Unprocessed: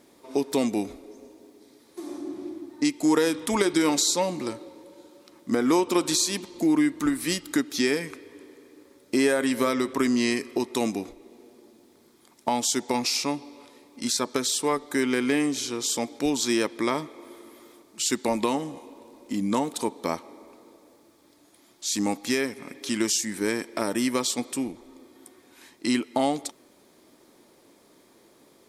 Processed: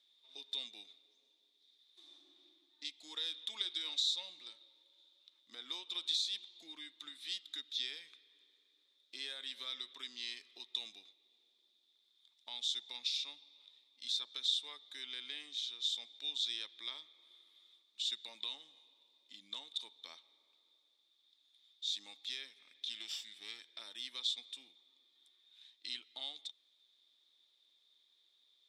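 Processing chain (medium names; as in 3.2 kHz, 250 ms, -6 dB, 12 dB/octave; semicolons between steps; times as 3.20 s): 22.90–23.59 s: comb filter that takes the minimum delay 0.39 ms; band-pass filter 3.6 kHz, Q 18; trim +6 dB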